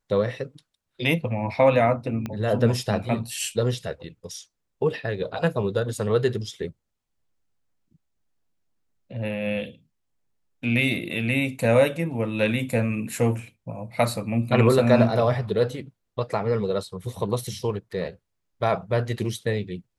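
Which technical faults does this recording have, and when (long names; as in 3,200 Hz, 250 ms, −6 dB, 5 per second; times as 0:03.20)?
0:02.26: click −17 dBFS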